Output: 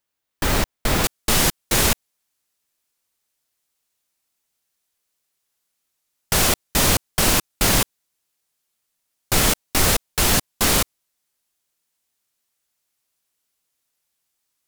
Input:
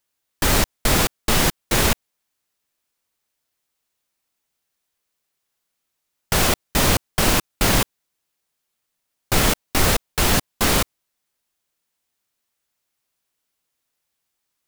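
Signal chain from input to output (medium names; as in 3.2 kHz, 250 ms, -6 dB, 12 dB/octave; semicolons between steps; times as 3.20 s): peaking EQ 10 kHz -4 dB 2.3 oct, from 1.04 s +5 dB; trim -1.5 dB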